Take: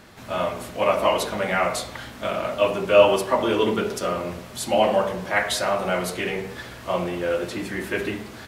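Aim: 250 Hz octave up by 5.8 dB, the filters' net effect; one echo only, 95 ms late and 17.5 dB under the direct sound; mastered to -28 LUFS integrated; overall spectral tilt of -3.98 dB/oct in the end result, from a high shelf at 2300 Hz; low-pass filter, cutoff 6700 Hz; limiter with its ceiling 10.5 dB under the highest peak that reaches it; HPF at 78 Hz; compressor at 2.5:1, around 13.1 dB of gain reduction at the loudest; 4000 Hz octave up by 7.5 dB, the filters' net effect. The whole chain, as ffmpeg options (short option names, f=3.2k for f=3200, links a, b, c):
-af "highpass=78,lowpass=6.7k,equalizer=f=250:t=o:g=8,highshelf=f=2.3k:g=7.5,equalizer=f=4k:t=o:g=3.5,acompressor=threshold=-27dB:ratio=2.5,alimiter=limit=-22.5dB:level=0:latency=1,aecho=1:1:95:0.133,volume=3.5dB"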